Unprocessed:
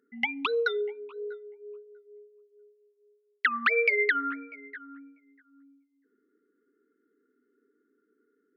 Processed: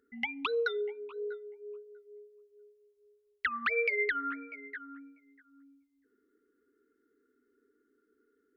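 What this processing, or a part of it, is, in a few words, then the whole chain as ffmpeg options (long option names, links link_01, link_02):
car stereo with a boomy subwoofer: -af "lowshelf=frequency=100:width_type=q:width=3:gain=11.5,alimiter=limit=-20dB:level=0:latency=1:release=426"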